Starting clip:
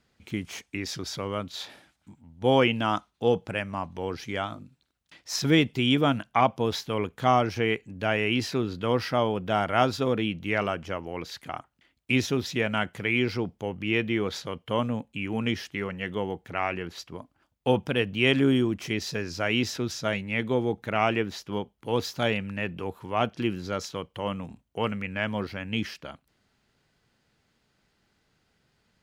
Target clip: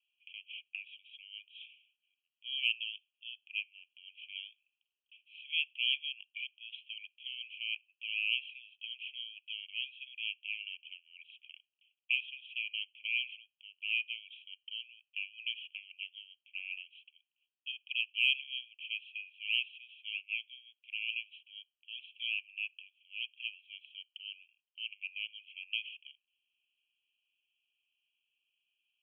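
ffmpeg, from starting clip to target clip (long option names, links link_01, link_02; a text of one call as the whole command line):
ffmpeg -i in.wav -af "asuperpass=centerf=2800:order=12:qfactor=3.2,acontrast=33,volume=-6dB" out.wav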